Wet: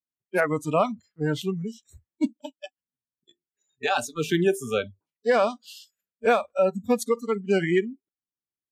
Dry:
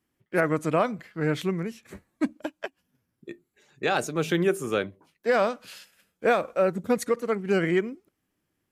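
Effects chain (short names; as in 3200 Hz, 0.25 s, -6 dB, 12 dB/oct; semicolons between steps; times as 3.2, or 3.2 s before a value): spectral noise reduction 30 dB; gain +2 dB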